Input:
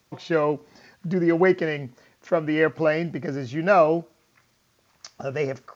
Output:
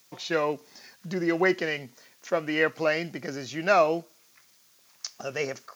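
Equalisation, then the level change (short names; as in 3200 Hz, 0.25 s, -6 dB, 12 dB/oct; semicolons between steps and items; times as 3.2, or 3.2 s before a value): HPF 130 Hz; tilt +1.5 dB/oct; high shelf 3300 Hz +9.5 dB; -3.5 dB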